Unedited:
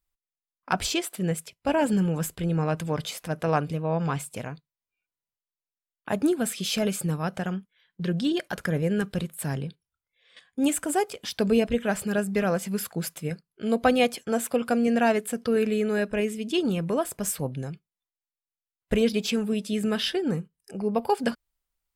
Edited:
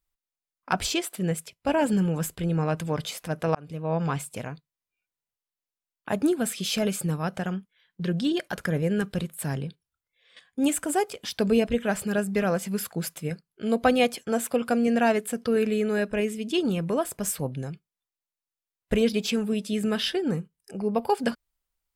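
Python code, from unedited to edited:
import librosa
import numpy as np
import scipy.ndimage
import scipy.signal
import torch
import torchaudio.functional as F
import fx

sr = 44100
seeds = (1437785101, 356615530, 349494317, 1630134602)

y = fx.edit(x, sr, fx.fade_in_span(start_s=3.55, length_s=0.38), tone=tone)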